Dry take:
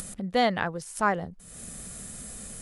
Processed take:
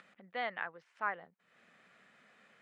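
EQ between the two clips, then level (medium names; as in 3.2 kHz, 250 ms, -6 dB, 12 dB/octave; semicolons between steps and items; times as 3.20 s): high-pass 130 Hz 12 dB/octave; low-pass 2.2 kHz 24 dB/octave; differentiator; +5.5 dB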